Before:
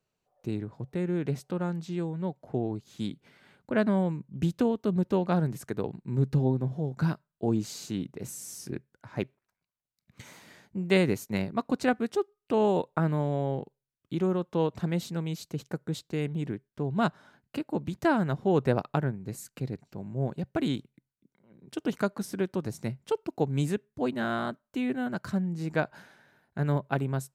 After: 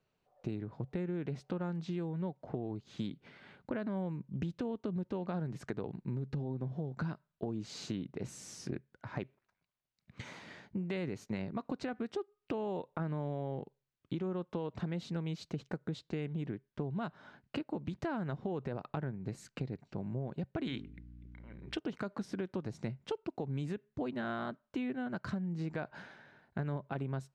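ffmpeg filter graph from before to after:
-filter_complex "[0:a]asettb=1/sr,asplit=3[s0][s1][s2];[s0]atrim=end=20.674[s3];[s1]atrim=start=20.67:end=21.77,asetpts=PTS-STARTPTS,afade=t=in:d=0.004:c=qsin,afade=t=out:st=1.096:d=0.004:c=qsin,equalizer=f=2000:w=0.79:g=11.5,bandreject=f=50:t=h:w=6,bandreject=f=100:t=h:w=6,bandreject=f=150:t=h:w=6,bandreject=f=200:t=h:w=6,bandreject=f=250:t=h:w=6,bandreject=f=300:t=h:w=6,bandreject=f=350:t=h:w=6,bandreject=f=400:t=h:w=6,bandreject=f=450:t=h:w=6,aeval=exprs='val(0)+0.00224*(sin(2*PI*60*n/s)+sin(2*PI*2*60*n/s)/2+sin(2*PI*3*60*n/s)/3+sin(2*PI*4*60*n/s)/4+sin(2*PI*5*60*n/s)/5)':c=same[s4];[s2]atrim=start=21.766[s5];[s3][s4]acrossfade=d=0.004:c1=hsin:c2=qsin[s6];[s6][s5]acrossfade=d=0.004:c1=qsin:c2=hsin,lowpass=4200,alimiter=limit=0.0841:level=0:latency=1:release=63,acompressor=threshold=0.0141:ratio=6,volume=1.33"

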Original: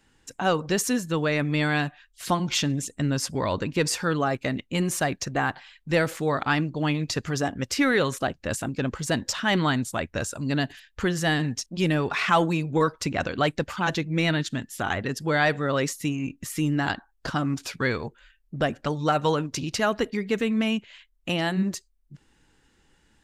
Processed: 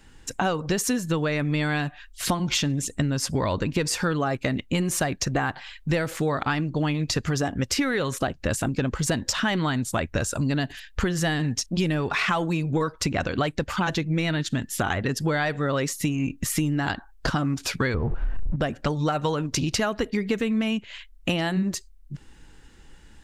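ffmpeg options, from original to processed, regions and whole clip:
-filter_complex "[0:a]asettb=1/sr,asplit=3[s0][s1][s2];[s0]atrim=end=17.944[s3];[s1]atrim=start=17.94:end=18.56,asetpts=PTS-STARTPTS,afade=t=in:d=0.004:c=qsin,afade=t=out:st=0.616:d=0.004:c=qsin,aeval=exprs='val(0)+0.5*0.02*sgn(val(0))':c=same,lowpass=1000,lowshelf=f=140:g=10.5[s4];[s2]atrim=start=18.556[s5];[s3][s4]acrossfade=d=0.004:c1=hsin:c2=qsin[s6];[s6][s5]acrossfade=d=0.004:c1=qsin:c2=hsin,lowshelf=f=70:g=11,acompressor=threshold=0.0355:ratio=10,volume=2.51"

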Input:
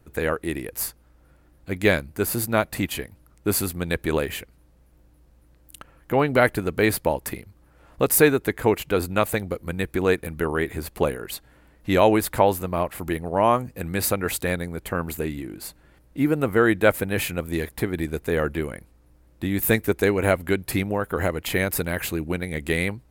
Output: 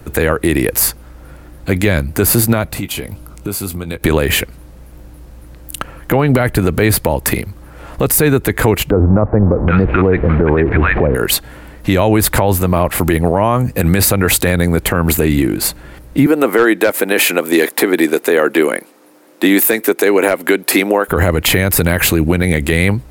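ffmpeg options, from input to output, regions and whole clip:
-filter_complex "[0:a]asettb=1/sr,asplit=3[s0][s1][s2];[s0]atrim=end=2.704[s3];[s1]atrim=start=2.7:end=4.03,asetpts=PTS-STARTPTS,afade=t=in:d=0.004:c=qsin,afade=t=out:st=1.326:d=0.004:c=qsin,bandreject=f=1800:w=5.6,acompressor=threshold=0.0126:ratio=10:attack=3.2:release=140:knee=1:detection=peak,asplit=2[s4][s5];[s5]adelay=20,volume=0.266[s6];[s4][s6]amix=inputs=2:normalize=0,atrim=end_sample=58653[s7];[s2]atrim=start=4.026[s8];[s3][s7]acrossfade=d=0.004:c1=hsin:c2=qsin[s9];[s9][s8]acrossfade=d=0.004:c1=qsin:c2=hsin,asettb=1/sr,asplit=3[s10][s11][s12];[s10]atrim=end=8.904[s13];[s11]atrim=start=8.9:end=11.15,asetpts=PTS-STARTPTS,afade=t=in:d=0.004:c=qsin,afade=t=out:st=2.246:d=0.004:c=qsin,aeval=exprs='val(0)+0.5*0.0266*sgn(val(0))':c=same,lowpass=f=2100:w=0.5412,lowpass=f=2100:w=1.3066,acrossover=split=1100[s14][s15];[s15]adelay=780[s16];[s14][s16]amix=inputs=2:normalize=0,atrim=end_sample=99225[s17];[s12]atrim=start=11.146[s18];[s13][s17]acrossfade=d=0.004:c1=hsin:c2=qsin[s19];[s19][s18]acrossfade=d=0.004:c1=qsin:c2=hsin,asettb=1/sr,asplit=3[s20][s21][s22];[s20]atrim=end=16.264[s23];[s21]atrim=start=16.26:end=21.08,asetpts=PTS-STARTPTS,afade=t=in:d=0.004:c=qsin,afade=t=out:st=4.816:d=0.004:c=qsin,highpass=f=280:w=0.5412,highpass=f=280:w=1.3066,volume=2.99,asoftclip=hard,volume=0.335[s24];[s22]atrim=start=21.076[s25];[s23][s24]acrossfade=d=0.004:c1=hsin:c2=qsin[s26];[s26][s25]acrossfade=d=0.004:c1=qsin:c2=hsin,acrossover=split=160[s27][s28];[s28]acompressor=threshold=0.0562:ratio=4[s29];[s27][s29]amix=inputs=2:normalize=0,alimiter=level_in=11.2:limit=0.891:release=50:level=0:latency=1,volume=0.891"

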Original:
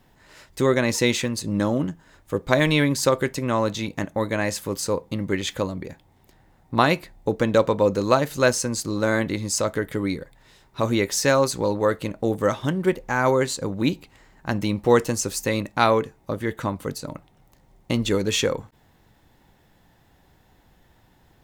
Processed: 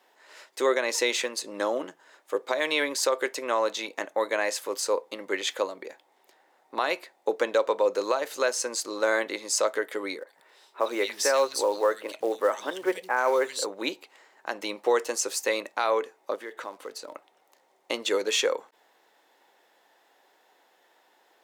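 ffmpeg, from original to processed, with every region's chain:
-filter_complex "[0:a]asettb=1/sr,asplit=3[s0][s1][s2];[s0]atrim=end=10.194[s3];[s1]atrim=start=10.19:end=13.66,asetpts=PTS-STARTPTS,afade=t=in:d=0.004:c=qsin,afade=t=out:st=3.466:d=0.004:c=qsin,bandreject=f=6700:w=10,acrossover=split=180|2500[s4][s5][s6];[s6]adelay=80[s7];[s4]adelay=170[s8];[s8][s5][s7]amix=inputs=3:normalize=0,atrim=end_sample=153027,acrusher=bits=7:mode=log:mix=0:aa=0.000001[s9];[s2]atrim=start=13.656[s10];[s3][s9]acrossfade=d=0.004:c1=hsin:c2=qsin[s11];[s11][s10]acrossfade=d=0.004:c1=qsin:c2=hsin,asettb=1/sr,asplit=3[s12][s13][s14];[s12]atrim=end=16.354[s15];[s13]atrim=start=16.35:end=17.15,asetpts=PTS-STARTPTS,afade=t=in:d=0.004:c=qsin,afade=t=out:st=0.796:d=0.004:c=qsin,acrusher=bits=6:mode=log:mix=0:aa=0.000001,highshelf=f=6300:g=-7,acompressor=threshold=0.0282:ratio=3:attack=3.2:release=140:knee=1:detection=peak[s16];[s14]atrim=start=17.146[s17];[s15][s16]acrossfade=d=0.004:c1=hsin:c2=qsin[s18];[s18][s17]acrossfade=d=0.004:c1=qsin:c2=hsin,highpass=f=410:w=0.5412,highpass=f=410:w=1.3066,highshelf=f=12000:g=-7.5,alimiter=limit=0.224:level=0:latency=1:release=192"

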